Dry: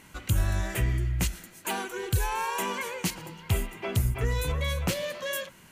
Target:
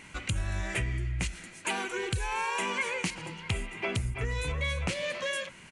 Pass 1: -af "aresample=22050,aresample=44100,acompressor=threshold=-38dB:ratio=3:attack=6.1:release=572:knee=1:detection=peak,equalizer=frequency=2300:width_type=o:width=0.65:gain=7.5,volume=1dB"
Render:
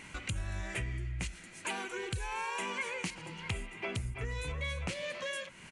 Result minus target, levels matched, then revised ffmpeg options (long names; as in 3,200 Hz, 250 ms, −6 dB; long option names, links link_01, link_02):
downward compressor: peak gain reduction +5.5 dB
-af "aresample=22050,aresample=44100,acompressor=threshold=-29.5dB:ratio=3:attack=6.1:release=572:knee=1:detection=peak,equalizer=frequency=2300:width_type=o:width=0.65:gain=7.5,volume=1dB"